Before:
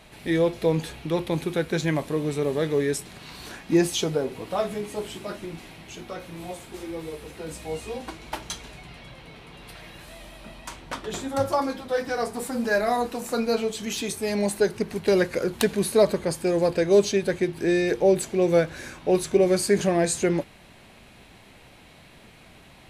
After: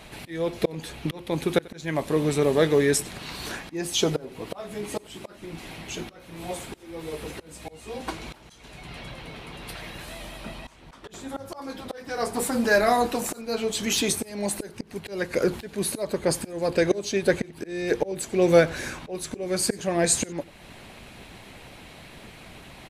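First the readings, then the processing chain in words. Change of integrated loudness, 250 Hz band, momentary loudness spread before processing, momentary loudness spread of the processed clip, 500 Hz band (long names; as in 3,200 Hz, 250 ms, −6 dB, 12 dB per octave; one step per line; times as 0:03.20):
−1.5 dB, −2.5 dB, 20 LU, 23 LU, −2.5 dB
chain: volume swells 478 ms
single-tap delay 92 ms −20.5 dB
harmonic and percussive parts rebalanced percussive +5 dB
level +2.5 dB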